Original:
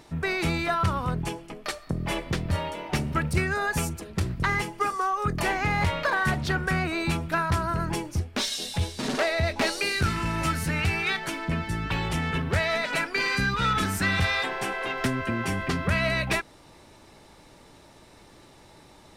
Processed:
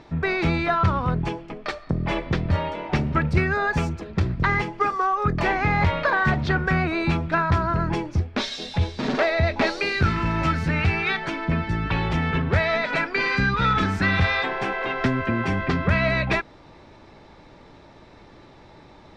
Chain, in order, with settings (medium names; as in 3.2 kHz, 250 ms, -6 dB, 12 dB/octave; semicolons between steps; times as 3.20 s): distance through air 190 m; band-stop 2.9 kHz, Q 19; trim +5 dB